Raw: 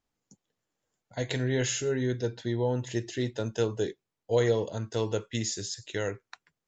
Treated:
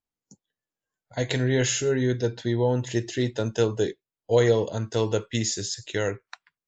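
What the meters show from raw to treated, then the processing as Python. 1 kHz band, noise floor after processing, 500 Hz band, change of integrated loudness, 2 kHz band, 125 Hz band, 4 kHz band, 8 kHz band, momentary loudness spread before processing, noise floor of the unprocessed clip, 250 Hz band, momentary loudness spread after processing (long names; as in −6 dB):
+5.0 dB, below −85 dBFS, +5.0 dB, +5.0 dB, +5.0 dB, +5.0 dB, +5.0 dB, can't be measured, 7 LU, below −85 dBFS, +5.0 dB, 7 LU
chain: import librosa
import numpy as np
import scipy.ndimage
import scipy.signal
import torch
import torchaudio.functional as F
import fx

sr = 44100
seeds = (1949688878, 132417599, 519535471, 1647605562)

y = fx.noise_reduce_blind(x, sr, reduce_db=15)
y = y * librosa.db_to_amplitude(5.0)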